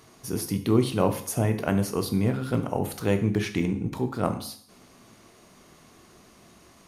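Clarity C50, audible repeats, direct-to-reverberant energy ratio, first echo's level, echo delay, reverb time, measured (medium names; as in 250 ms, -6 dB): 11.5 dB, no echo, 7.0 dB, no echo, no echo, 0.55 s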